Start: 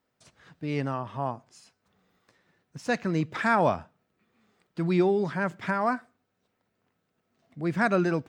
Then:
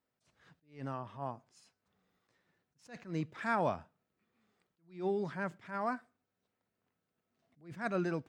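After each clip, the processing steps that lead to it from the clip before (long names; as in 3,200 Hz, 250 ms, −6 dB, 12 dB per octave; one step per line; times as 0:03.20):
level that may rise only so fast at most 170 dB per second
level −9 dB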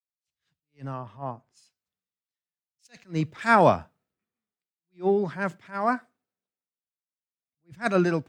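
multiband upward and downward expander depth 100%
level +7.5 dB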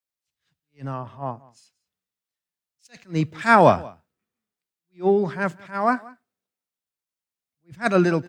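single-tap delay 181 ms −23 dB
level +4 dB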